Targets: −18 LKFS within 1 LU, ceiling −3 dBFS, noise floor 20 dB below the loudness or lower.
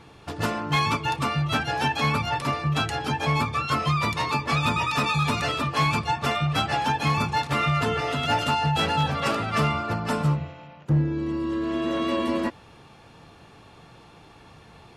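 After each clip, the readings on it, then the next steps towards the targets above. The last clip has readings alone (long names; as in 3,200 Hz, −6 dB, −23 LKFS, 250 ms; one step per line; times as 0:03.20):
share of clipped samples 0.4%; peaks flattened at −15.5 dBFS; integrated loudness −24.5 LKFS; sample peak −15.5 dBFS; target loudness −18.0 LKFS
→ clipped peaks rebuilt −15.5 dBFS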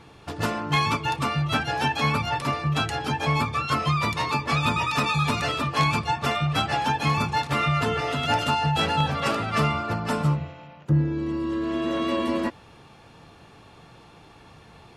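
share of clipped samples 0.0%; integrated loudness −24.5 LKFS; sample peak −6.5 dBFS; target loudness −18.0 LKFS
→ level +6.5 dB
brickwall limiter −3 dBFS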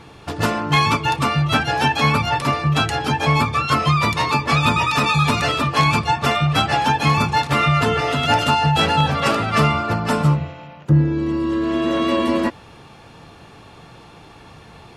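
integrated loudness −18.0 LKFS; sample peak −3.0 dBFS; background noise floor −44 dBFS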